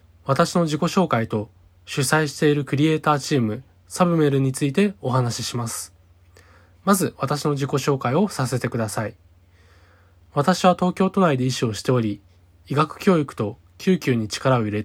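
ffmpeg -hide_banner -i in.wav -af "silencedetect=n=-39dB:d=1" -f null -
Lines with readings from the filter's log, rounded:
silence_start: 9.12
silence_end: 10.35 | silence_duration: 1.23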